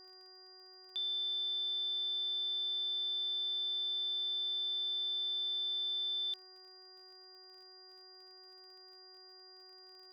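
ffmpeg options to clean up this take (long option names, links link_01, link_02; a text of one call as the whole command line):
ffmpeg -i in.wav -af "adeclick=threshold=4,bandreject=frequency=372.8:width_type=h:width=4,bandreject=frequency=745.6:width_type=h:width=4,bandreject=frequency=1118.4:width_type=h:width=4,bandreject=frequency=1491.2:width_type=h:width=4,bandreject=frequency=1864:width_type=h:width=4,bandreject=frequency=4800:width=30" out.wav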